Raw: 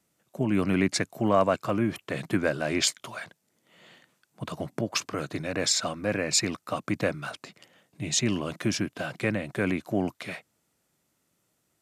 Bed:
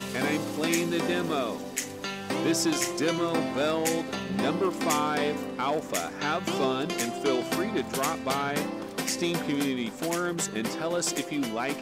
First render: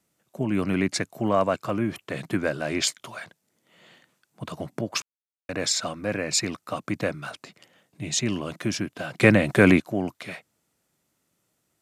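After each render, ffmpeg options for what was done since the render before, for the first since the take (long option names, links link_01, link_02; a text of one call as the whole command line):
ffmpeg -i in.wav -filter_complex "[0:a]asplit=5[link_01][link_02][link_03][link_04][link_05];[link_01]atrim=end=5.02,asetpts=PTS-STARTPTS,afade=type=out:start_time=5.016:duration=0.004:curve=hsin[link_06];[link_02]atrim=start=5.02:end=5.49,asetpts=PTS-STARTPTS,volume=0[link_07];[link_03]atrim=start=5.49:end=9.202,asetpts=PTS-STARTPTS,afade=type=in:duration=0.004:curve=hsin[link_08];[link_04]atrim=start=9.198:end=9.802,asetpts=PTS-STARTPTS,volume=11dB[link_09];[link_05]atrim=start=9.798[link_10];[link_06][link_07][link_08]concat=n=3:v=0:a=1[link_11];[link_11][link_09]acrossfade=duration=0.004:curve1=hsin:curve2=hsin[link_12];[link_12][link_10]acrossfade=duration=0.004:curve1=hsin:curve2=hsin" out.wav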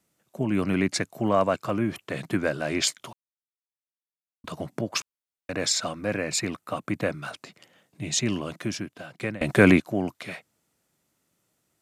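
ffmpeg -i in.wav -filter_complex "[0:a]asettb=1/sr,asplit=3[link_01][link_02][link_03];[link_01]atrim=end=6.294[link_04];[link_02]atrim=start=6.29:end=7.1,asetpts=PTS-STARTPTS,afade=type=in:duration=0.004:curve=qsin,afade=type=out:start_time=0.806:duration=0.004:curve=qsin,equalizer=frequency=5400:width=1.5:gain=-6[link_05];[link_03]atrim=start=7.096[link_06];[link_04][link_05]acrossfade=duration=0.004:curve1=hsin:curve2=qsin[link_07];[link_07][link_06]acrossfade=duration=0.004:curve1=qsin:curve2=hsin,asplit=4[link_08][link_09][link_10][link_11];[link_08]atrim=end=3.13,asetpts=PTS-STARTPTS,afade=type=out:start_time=3.126:duration=0.004:curve=hsin[link_12];[link_09]atrim=start=3.13:end=4.44,asetpts=PTS-STARTPTS,volume=0[link_13];[link_10]atrim=start=4.44:end=9.41,asetpts=PTS-STARTPTS,afade=type=in:duration=0.004:curve=hsin,afade=type=out:start_time=3.91:duration=1.06:silence=0.0749894[link_14];[link_11]atrim=start=9.41,asetpts=PTS-STARTPTS,afade=type=in:duration=0.004:curve=hsin:silence=0.0749894[link_15];[link_12][link_13][link_14][link_15]concat=n=4:v=0:a=1" out.wav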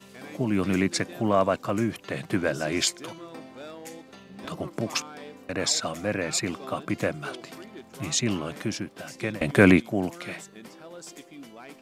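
ffmpeg -i in.wav -i bed.wav -filter_complex "[1:a]volume=-15dB[link_01];[0:a][link_01]amix=inputs=2:normalize=0" out.wav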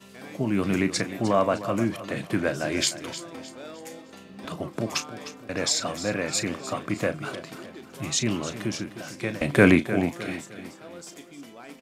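ffmpeg -i in.wav -filter_complex "[0:a]asplit=2[link_01][link_02];[link_02]adelay=35,volume=-12dB[link_03];[link_01][link_03]amix=inputs=2:normalize=0,aecho=1:1:306|612|918|1224:0.224|0.0873|0.0341|0.0133" out.wav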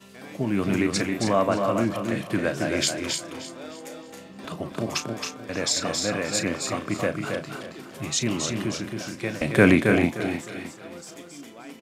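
ffmpeg -i in.wav -af "aecho=1:1:271:0.562" out.wav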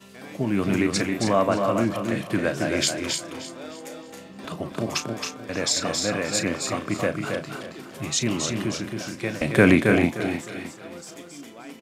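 ffmpeg -i in.wav -af "volume=1dB,alimiter=limit=-3dB:level=0:latency=1" out.wav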